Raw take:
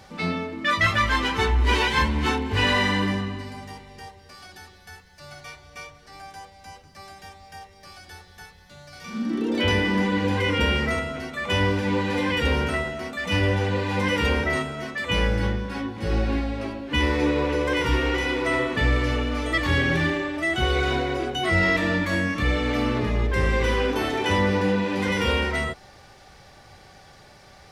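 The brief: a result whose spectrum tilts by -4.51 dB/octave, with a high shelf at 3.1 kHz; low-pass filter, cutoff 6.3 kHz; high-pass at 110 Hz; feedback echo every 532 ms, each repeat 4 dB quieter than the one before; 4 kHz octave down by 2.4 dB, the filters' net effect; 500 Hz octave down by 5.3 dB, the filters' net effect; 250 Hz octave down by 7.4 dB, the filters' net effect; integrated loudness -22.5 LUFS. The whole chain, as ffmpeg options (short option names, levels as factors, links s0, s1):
-af "highpass=110,lowpass=6300,equalizer=f=250:t=o:g=-8.5,equalizer=f=500:t=o:g=-4,highshelf=f=3100:g=5,equalizer=f=4000:t=o:g=-7,aecho=1:1:532|1064|1596|2128|2660|3192|3724|4256|4788:0.631|0.398|0.25|0.158|0.0994|0.0626|0.0394|0.0249|0.0157,volume=1.26"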